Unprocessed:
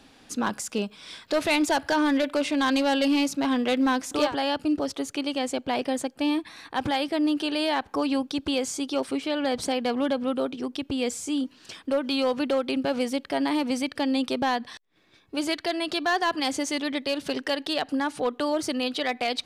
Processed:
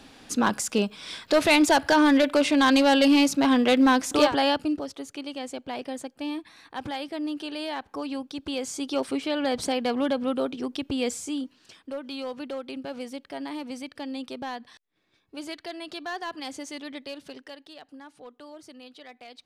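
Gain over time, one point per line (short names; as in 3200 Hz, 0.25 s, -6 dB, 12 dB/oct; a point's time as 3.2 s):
4.48 s +4 dB
4.89 s -7 dB
8.33 s -7 dB
8.97 s 0 dB
11.12 s 0 dB
11.75 s -9.5 dB
17.05 s -9.5 dB
17.72 s -19 dB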